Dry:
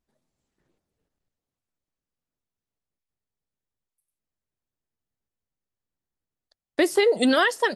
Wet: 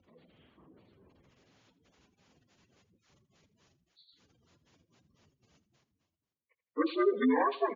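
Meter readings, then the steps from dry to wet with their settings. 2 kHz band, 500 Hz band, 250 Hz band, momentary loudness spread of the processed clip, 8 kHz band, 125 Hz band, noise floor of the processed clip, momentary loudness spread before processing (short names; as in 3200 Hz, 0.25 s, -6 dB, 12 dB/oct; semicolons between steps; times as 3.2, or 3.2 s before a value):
-14.5 dB, -8.5 dB, -6.0 dB, 8 LU, -33.0 dB, n/a, under -85 dBFS, 6 LU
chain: inharmonic rescaling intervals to 75%; spectral gate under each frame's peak -20 dB strong; HPF 62 Hz; high shelf 4800 Hz -10 dB; reverse; upward compressor, threshold -35 dBFS; reverse; feedback echo 81 ms, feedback 26%, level -16 dB; gain -6 dB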